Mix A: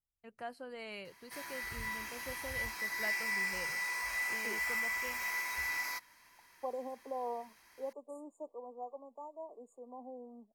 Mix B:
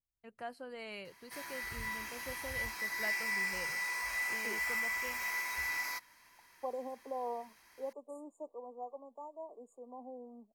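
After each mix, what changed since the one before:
none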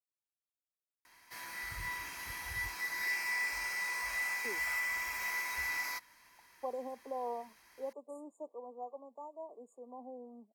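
first voice: muted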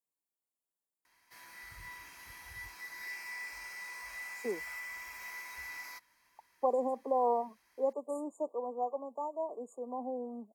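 speech +9.5 dB; background -8.0 dB

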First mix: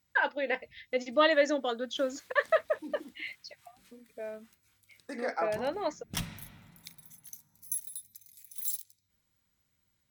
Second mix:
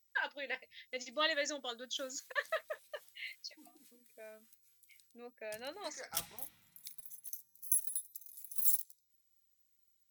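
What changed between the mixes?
first voice +4.5 dB; second voice: entry +0.75 s; master: add pre-emphasis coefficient 0.9

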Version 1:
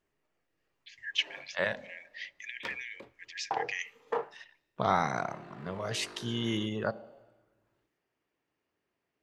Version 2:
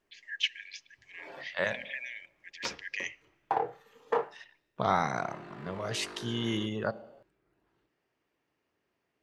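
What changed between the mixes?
first voice: entry -0.75 s; background +3.5 dB

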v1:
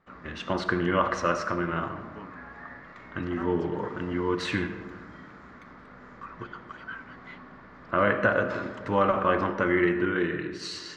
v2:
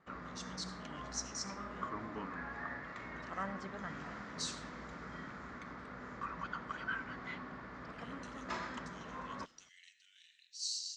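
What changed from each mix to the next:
speech: add inverse Chebyshev high-pass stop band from 1100 Hz, stop band 70 dB; master: add synth low-pass 7500 Hz, resonance Q 1.8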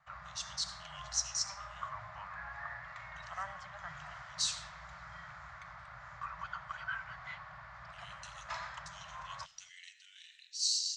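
speech +7.5 dB; master: add inverse Chebyshev band-stop 210–450 Hz, stop band 40 dB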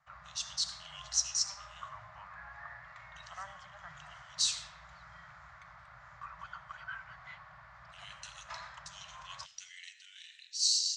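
speech +3.5 dB; background -4.0 dB

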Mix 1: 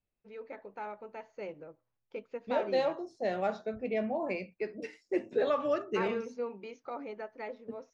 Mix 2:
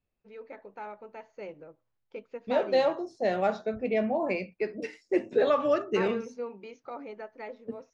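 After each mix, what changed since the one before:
second voice +5.0 dB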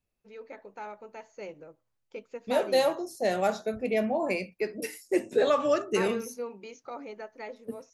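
master: remove Gaussian blur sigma 1.9 samples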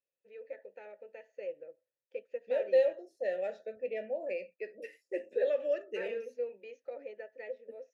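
first voice +5.5 dB; master: add vowel filter e

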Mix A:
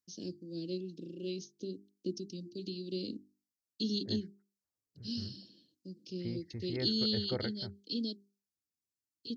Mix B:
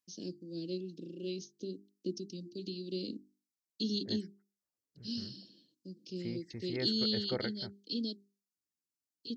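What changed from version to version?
second voice: remove air absorption 330 m; master: add bell 91 Hz -12 dB 0.48 oct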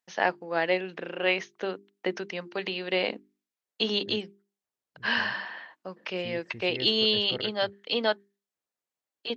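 first voice: remove elliptic band-stop 310–4700 Hz, stop band 50 dB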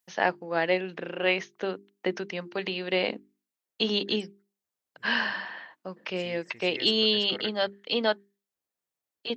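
first voice: add low shelf 170 Hz +6.5 dB; second voice: add tilt +4.5 dB/oct

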